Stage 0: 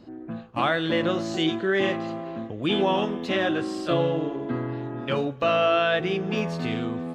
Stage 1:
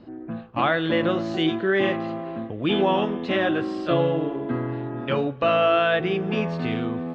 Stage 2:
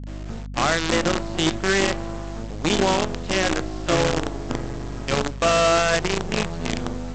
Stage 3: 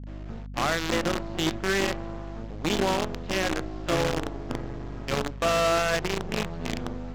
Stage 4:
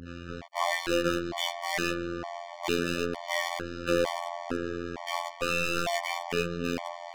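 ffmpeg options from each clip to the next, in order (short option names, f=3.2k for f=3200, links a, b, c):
-af "lowpass=3.4k,volume=2dB"
-af "aresample=16000,acrusher=bits=4:dc=4:mix=0:aa=0.000001,aresample=44100,aeval=exprs='val(0)+0.0251*(sin(2*PI*50*n/s)+sin(2*PI*2*50*n/s)/2+sin(2*PI*3*50*n/s)/3+sin(2*PI*4*50*n/s)/4+sin(2*PI*5*50*n/s)/5)':c=same"
-af "adynamicsmooth=sensitivity=2:basefreq=3.5k,volume=-5dB"
-filter_complex "[0:a]asplit=2[a][b];[b]highpass=f=720:p=1,volume=21dB,asoftclip=type=tanh:threshold=-13.5dB[c];[a][c]amix=inputs=2:normalize=0,lowpass=f=7.4k:p=1,volume=-6dB,afftfilt=real='hypot(re,im)*cos(PI*b)':imag='0':win_size=2048:overlap=0.75,afftfilt=real='re*gt(sin(2*PI*1.1*pts/sr)*(1-2*mod(floor(b*sr/1024/600),2)),0)':imag='im*gt(sin(2*PI*1.1*pts/sr)*(1-2*mod(floor(b*sr/1024/600),2)),0)':win_size=1024:overlap=0.75"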